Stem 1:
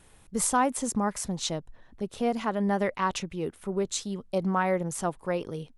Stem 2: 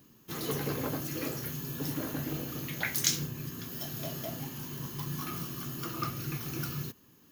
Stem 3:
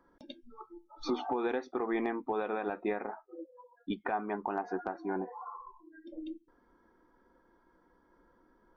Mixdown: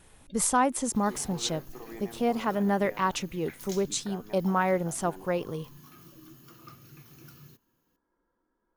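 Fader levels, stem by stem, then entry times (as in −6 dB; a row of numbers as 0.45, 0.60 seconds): +0.5, −15.0, −12.0 decibels; 0.00, 0.65, 0.00 seconds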